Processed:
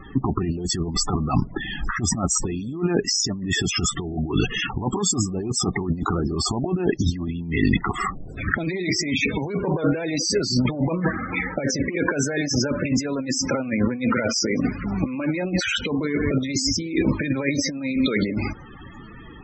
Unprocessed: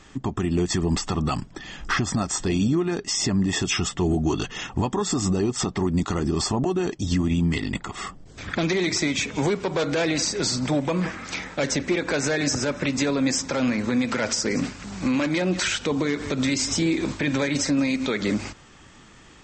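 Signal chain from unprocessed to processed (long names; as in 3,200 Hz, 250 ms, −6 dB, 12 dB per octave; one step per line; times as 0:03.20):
0:10.64–0:11.35: low-pass filter 3,900 Hz → 1,700 Hz 12 dB per octave
compressor whose output falls as the input rises −27 dBFS, ratio −0.5
spectral peaks only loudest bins 32
level +6 dB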